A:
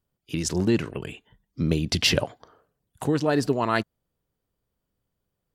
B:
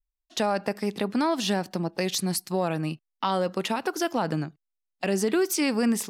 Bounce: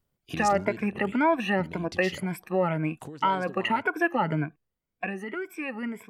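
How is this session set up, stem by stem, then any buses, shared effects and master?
+2.0 dB, 0.00 s, no send, compression 10:1, threshold -30 dBFS, peak gain reduction 14 dB; auto duck -10 dB, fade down 1.25 s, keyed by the second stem
4.93 s -3.5 dB -> 5.15 s -12 dB, 0.00 s, no send, drifting ripple filter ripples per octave 1.7, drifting +1.9 Hz, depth 18 dB; resonant high shelf 3.3 kHz -14 dB, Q 3; band-stop 3.7 kHz, Q 12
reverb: none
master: none

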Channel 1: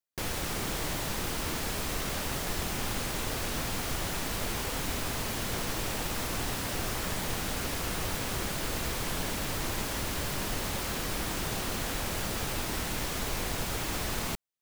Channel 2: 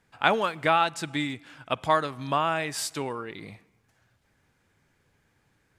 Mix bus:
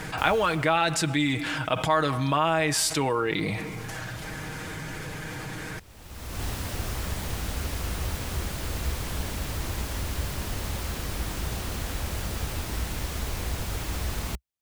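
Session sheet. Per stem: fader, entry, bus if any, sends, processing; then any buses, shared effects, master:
-2.0 dB, 0.00 s, no send, peaking EQ 65 Hz +13 dB 1.4 oct; auto duck -22 dB, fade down 0.80 s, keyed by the second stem
-5.0 dB, 0.00 s, no send, comb 6.4 ms, depth 50%; level flattener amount 70%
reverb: none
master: none

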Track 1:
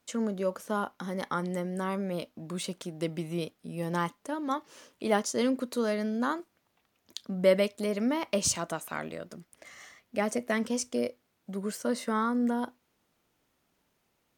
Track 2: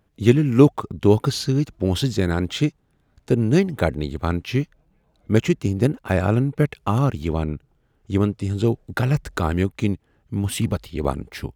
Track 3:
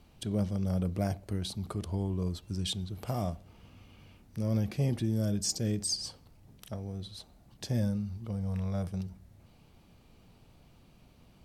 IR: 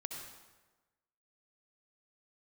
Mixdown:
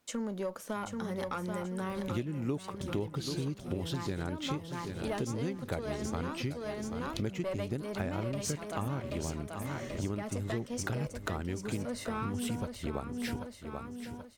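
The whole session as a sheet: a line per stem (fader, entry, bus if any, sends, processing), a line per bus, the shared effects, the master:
0.0 dB, 0.00 s, no send, echo send -5.5 dB, single-diode clipper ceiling -23 dBFS
-5.5 dB, 1.90 s, no send, echo send -14.5 dB, upward compressor, threshold -23 dBFS
-17.5 dB, 0.50 s, no send, no echo send, none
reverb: none
echo: feedback delay 783 ms, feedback 36%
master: compression 6:1, threshold -32 dBFS, peak gain reduction 18 dB

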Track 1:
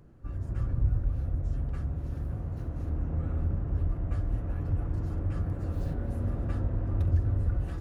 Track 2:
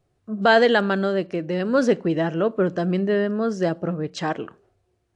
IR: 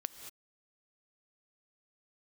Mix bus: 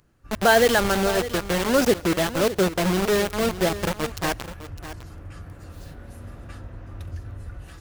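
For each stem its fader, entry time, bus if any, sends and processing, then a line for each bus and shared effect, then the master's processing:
0.0 dB, 0.00 s, no send, no echo send, tilt shelf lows -9.5 dB, about 1.2 kHz
-2.0 dB, 0.00 s, send -13 dB, echo send -12 dB, reverb removal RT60 0.57 s; bit crusher 4-bit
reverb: on, pre-delay 3 ms
echo: delay 606 ms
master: none

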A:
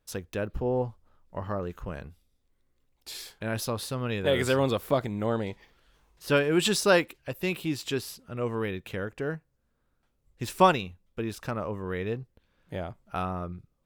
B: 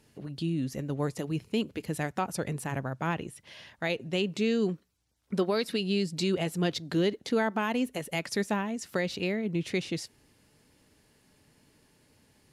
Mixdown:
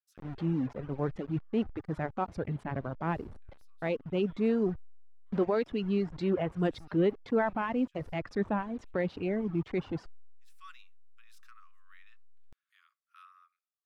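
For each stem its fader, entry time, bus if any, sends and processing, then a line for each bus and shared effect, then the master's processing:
-18.5 dB, 0.00 s, muted 4.61–5.26 s, no send, Chebyshev high-pass 1.1 kHz, order 8; auto duck -20 dB, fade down 0.30 s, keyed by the second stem
+2.5 dB, 0.00 s, no send, send-on-delta sampling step -36.5 dBFS; reverb removal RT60 1.9 s; Bessel low-pass 1.3 kHz, order 2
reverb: none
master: transient shaper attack -4 dB, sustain +1 dB

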